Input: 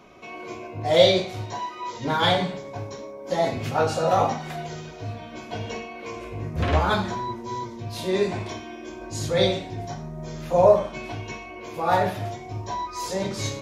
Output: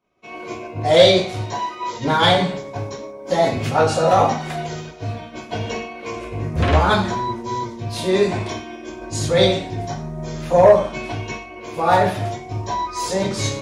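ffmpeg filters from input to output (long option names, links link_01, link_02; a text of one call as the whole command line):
ffmpeg -i in.wav -af "acontrast=60,agate=range=-33dB:threshold=-28dB:ratio=3:detection=peak,aexciter=amount=1.1:drive=1:freq=8300" out.wav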